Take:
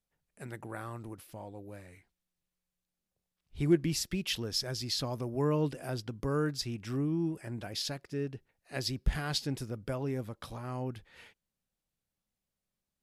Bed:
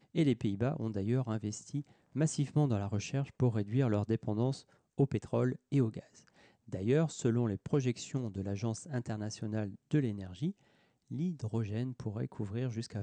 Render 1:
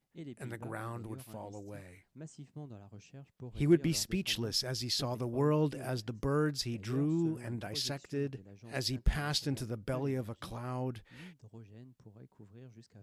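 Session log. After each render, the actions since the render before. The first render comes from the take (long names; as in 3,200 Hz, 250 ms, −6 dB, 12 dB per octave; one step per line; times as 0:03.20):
mix in bed −17 dB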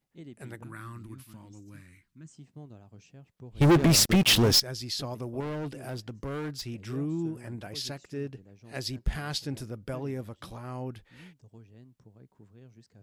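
0:00.63–0:02.31: flat-topped bell 590 Hz −16 dB 1.3 octaves
0:03.61–0:04.60: leveller curve on the samples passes 5
0:05.40–0:06.69: hard clipping −31.5 dBFS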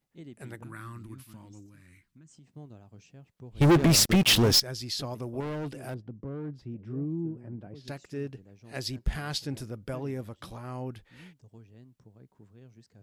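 0:01.66–0:02.52: downward compressor, threshold −50 dBFS
0:05.94–0:07.88: resonant band-pass 190 Hz, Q 0.63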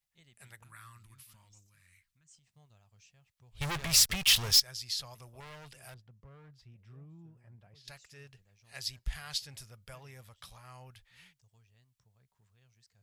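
guitar amp tone stack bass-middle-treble 10-0-10
notch filter 1,500 Hz, Q 22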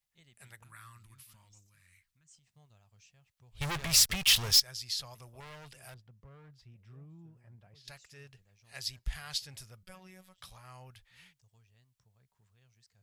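0:09.83–0:10.38: phases set to zero 186 Hz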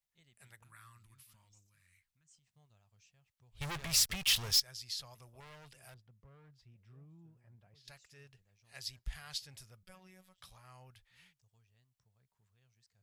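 level −5.5 dB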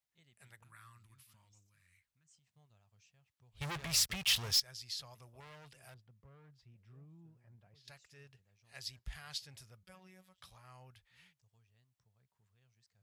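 high-pass filter 50 Hz
high-shelf EQ 6,000 Hz −4 dB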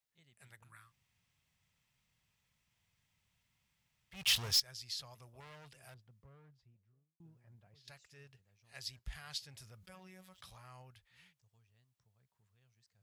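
0:00.85–0:04.19: fill with room tone, crossfade 0.16 s
0:06.20–0:07.20: fade out and dull
0:09.57–0:10.82: envelope flattener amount 50%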